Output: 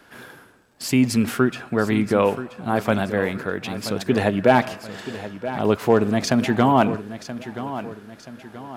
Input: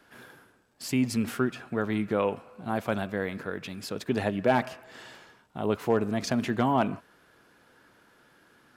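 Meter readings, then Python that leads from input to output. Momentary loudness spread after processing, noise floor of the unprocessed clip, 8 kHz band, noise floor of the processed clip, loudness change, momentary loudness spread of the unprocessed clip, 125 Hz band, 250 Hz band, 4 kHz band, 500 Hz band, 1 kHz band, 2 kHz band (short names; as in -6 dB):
16 LU, -62 dBFS, +8.5 dB, -51 dBFS, +7.5 dB, 15 LU, +8.5 dB, +8.0 dB, +8.5 dB, +8.5 dB, +8.0 dB, +8.0 dB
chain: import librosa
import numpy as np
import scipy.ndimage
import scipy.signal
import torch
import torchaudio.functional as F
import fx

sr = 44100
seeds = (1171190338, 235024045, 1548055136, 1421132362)

p1 = x + fx.echo_feedback(x, sr, ms=978, feedback_pct=42, wet_db=-13.0, dry=0)
y = p1 * librosa.db_to_amplitude(8.0)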